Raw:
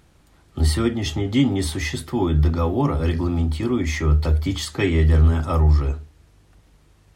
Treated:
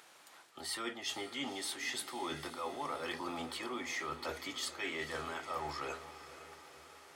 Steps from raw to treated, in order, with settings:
high-pass filter 730 Hz 12 dB per octave
reversed playback
downward compressor 6 to 1, threshold −42 dBFS, peak gain reduction 17.5 dB
reversed playback
feedback delay with all-pass diffusion 482 ms, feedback 61%, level −13 dB
level +4 dB

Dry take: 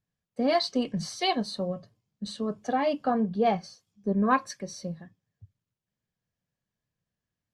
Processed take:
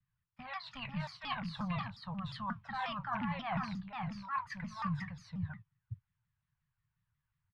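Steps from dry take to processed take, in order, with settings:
loose part that buzzes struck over −29 dBFS, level −36 dBFS
noise gate −53 dBFS, range −8 dB
Chebyshev band-stop filter 140–1,000 Hz, order 3
reversed playback
downward compressor 20 to 1, threshold −45 dBFS, peak gain reduction 25.5 dB
reversed playback
high-frequency loss of the air 500 metres
single-tap delay 482 ms −3.5 dB
pitch modulation by a square or saw wave saw down 5.6 Hz, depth 250 cents
level +13.5 dB

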